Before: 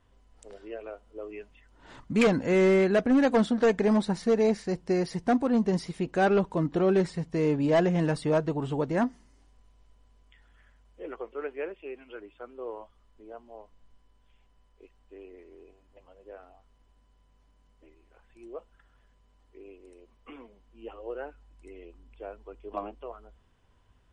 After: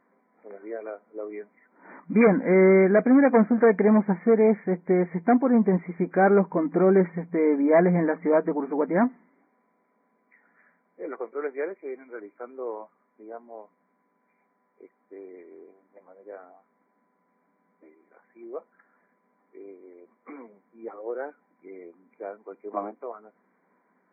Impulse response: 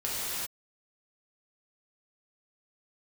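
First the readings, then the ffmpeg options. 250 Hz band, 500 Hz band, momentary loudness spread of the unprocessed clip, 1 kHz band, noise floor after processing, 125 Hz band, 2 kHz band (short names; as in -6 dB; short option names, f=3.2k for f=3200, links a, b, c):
+4.5 dB, +4.5 dB, 22 LU, +4.5 dB, -71 dBFS, +2.0 dB, +3.5 dB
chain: -af "afftfilt=real='re*between(b*sr/4096,170,2400)':imag='im*between(b*sr/4096,170,2400)':win_size=4096:overlap=0.75,volume=4.5dB" -ar 44100 -c:a libvorbis -b:a 48k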